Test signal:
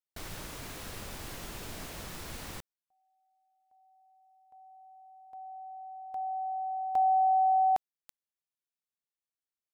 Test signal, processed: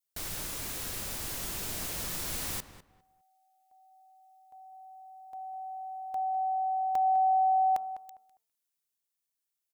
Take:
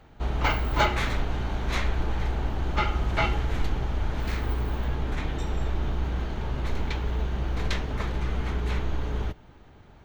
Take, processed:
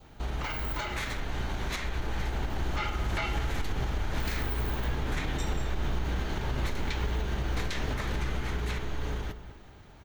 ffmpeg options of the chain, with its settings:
ffmpeg -i in.wav -filter_complex "[0:a]bandreject=frequency=224.9:width_type=h:width=4,bandreject=frequency=449.8:width_type=h:width=4,bandreject=frequency=674.7:width_type=h:width=4,bandreject=frequency=899.6:width_type=h:width=4,bandreject=frequency=1124.5:width_type=h:width=4,bandreject=frequency=1349.4:width_type=h:width=4,adynamicequalizer=threshold=0.00398:dfrequency=1800:dqfactor=1.9:tfrequency=1800:tqfactor=1.9:attack=5:release=100:ratio=0.375:range=1.5:mode=boostabove:tftype=bell,acompressor=threshold=-27dB:ratio=6:attack=14:release=231:knee=6:detection=peak,highshelf=frequency=4700:gain=11.5,alimiter=limit=-23.5dB:level=0:latency=1:release=121,dynaudnorm=framelen=450:gausssize=9:maxgain=3dB,asplit=2[link_01][link_02];[link_02]adelay=202,lowpass=frequency=2200:poles=1,volume=-12dB,asplit=2[link_03][link_04];[link_04]adelay=202,lowpass=frequency=2200:poles=1,volume=0.23,asplit=2[link_05][link_06];[link_06]adelay=202,lowpass=frequency=2200:poles=1,volume=0.23[link_07];[link_03][link_05][link_07]amix=inputs=3:normalize=0[link_08];[link_01][link_08]amix=inputs=2:normalize=0" out.wav

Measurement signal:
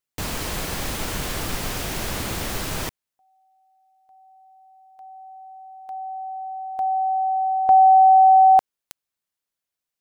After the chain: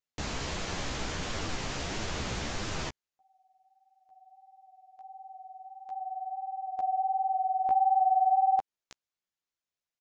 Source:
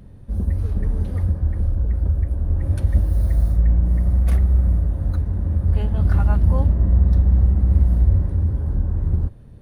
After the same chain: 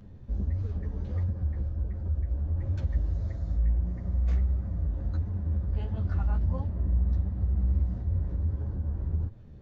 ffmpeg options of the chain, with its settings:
ffmpeg -i in.wav -af "acompressor=threshold=-24dB:ratio=2:attack=7.4:release=144:detection=rms,flanger=delay=8.6:depth=8.6:regen=1:speed=1.5:shape=triangular,aresample=16000,aresample=44100,volume=-2dB" out.wav

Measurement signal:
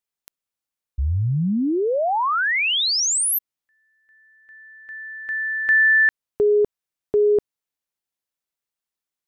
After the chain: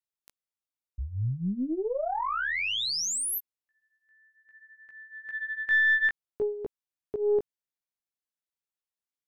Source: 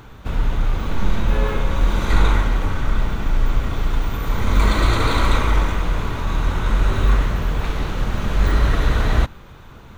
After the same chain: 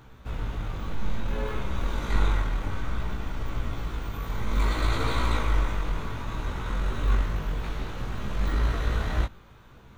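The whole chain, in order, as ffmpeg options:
ffmpeg -i in.wav -af "flanger=delay=15.5:depth=3.9:speed=0.6,aeval=exprs='0.596*(cos(1*acos(clip(val(0)/0.596,-1,1)))-cos(1*PI/2))+0.0188*(cos(3*acos(clip(val(0)/0.596,-1,1)))-cos(3*PI/2))+0.0266*(cos(4*acos(clip(val(0)/0.596,-1,1)))-cos(4*PI/2))':channel_layout=same,volume=-5.5dB" out.wav

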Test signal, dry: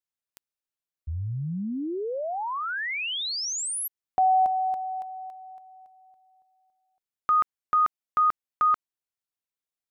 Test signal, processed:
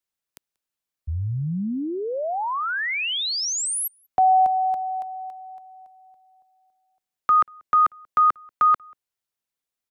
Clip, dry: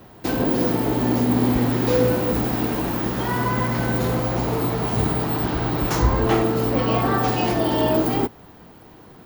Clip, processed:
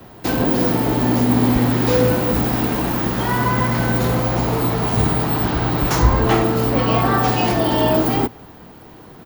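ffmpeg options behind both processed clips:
ffmpeg -i in.wav -filter_complex "[0:a]acrossover=split=350|430|3000[link_01][link_02][link_03][link_04];[link_02]acompressor=threshold=-46dB:ratio=6:attack=1.8:release=68:knee=6[link_05];[link_01][link_05][link_03][link_04]amix=inputs=4:normalize=0,asplit=2[link_06][link_07];[link_07]adelay=186.6,volume=-29dB,highshelf=frequency=4000:gain=-4.2[link_08];[link_06][link_08]amix=inputs=2:normalize=0,volume=4.5dB" out.wav

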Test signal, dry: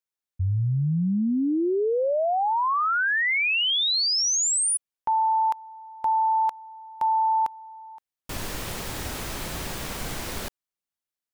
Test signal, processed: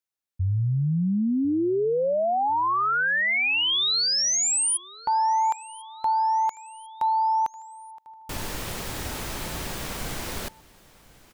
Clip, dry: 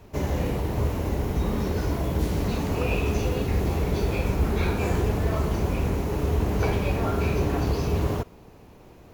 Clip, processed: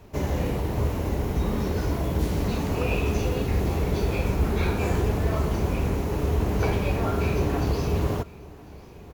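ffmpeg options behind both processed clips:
ffmpeg -i in.wav -af "aecho=1:1:1047|2094|3141:0.075|0.0382|0.0195" out.wav

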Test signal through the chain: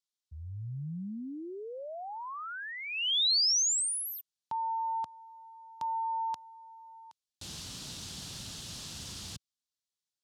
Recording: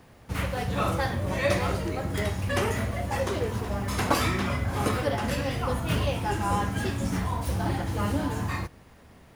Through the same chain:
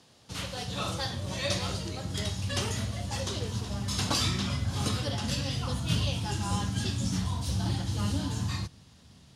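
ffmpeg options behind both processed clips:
ffmpeg -i in.wav -af "aexciter=amount=4.7:drive=7.6:freq=3100,highpass=110,lowpass=5300,asubboost=boost=4.5:cutoff=190,volume=-7.5dB" out.wav

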